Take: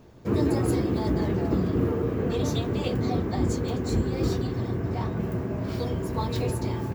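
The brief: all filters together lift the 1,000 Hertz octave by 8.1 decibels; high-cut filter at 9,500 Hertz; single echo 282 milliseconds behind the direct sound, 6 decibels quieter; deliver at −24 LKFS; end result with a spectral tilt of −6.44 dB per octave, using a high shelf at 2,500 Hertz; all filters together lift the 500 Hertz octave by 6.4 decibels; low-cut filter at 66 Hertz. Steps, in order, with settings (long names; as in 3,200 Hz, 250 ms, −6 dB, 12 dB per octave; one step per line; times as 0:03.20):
high-pass filter 66 Hz
low-pass filter 9,500 Hz
parametric band 500 Hz +6.5 dB
parametric band 1,000 Hz +7 dB
high-shelf EQ 2,500 Hz +6.5 dB
single-tap delay 282 ms −6 dB
level −1 dB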